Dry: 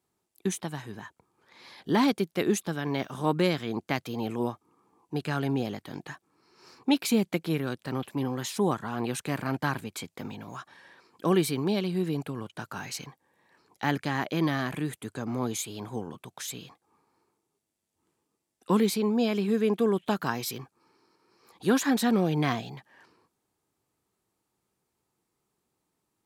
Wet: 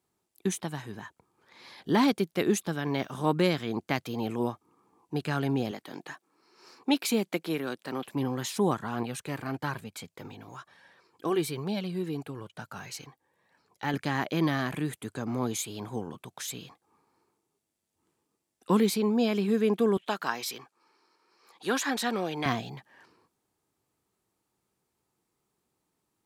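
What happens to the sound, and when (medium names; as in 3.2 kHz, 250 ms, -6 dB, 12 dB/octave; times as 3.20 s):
5.71–8.08 s: high-pass 250 Hz
9.03–13.94 s: flange 1.1 Hz, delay 1.2 ms, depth 1.6 ms, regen -45%
19.97–22.46 s: frequency weighting A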